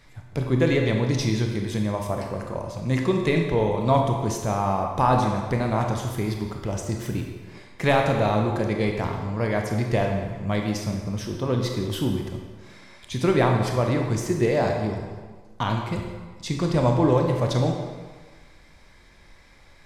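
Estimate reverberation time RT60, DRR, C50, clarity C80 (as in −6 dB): 1.4 s, 2.0 dB, 3.5 dB, 5.5 dB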